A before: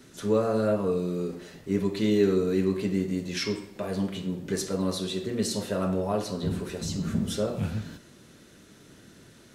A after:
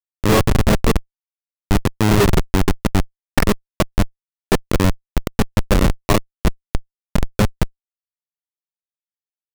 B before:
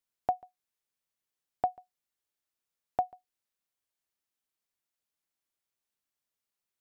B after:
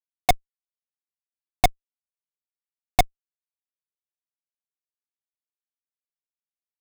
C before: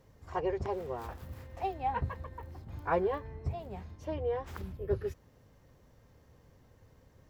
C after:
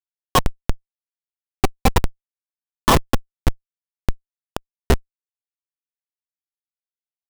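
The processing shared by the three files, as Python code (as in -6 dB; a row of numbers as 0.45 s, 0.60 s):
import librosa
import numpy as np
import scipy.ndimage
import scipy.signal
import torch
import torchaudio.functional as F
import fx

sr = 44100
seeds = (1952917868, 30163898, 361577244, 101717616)

y = fx.transient(x, sr, attack_db=8, sustain_db=-4)
y = fx.small_body(y, sr, hz=(1100.0, 1800.0), ring_ms=30, db=18)
y = fx.schmitt(y, sr, flips_db=-17.5)
y = y * 10.0 ** (-6 / 20.0) / np.max(np.abs(y))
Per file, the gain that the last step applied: +13.5 dB, +21.0 dB, +18.0 dB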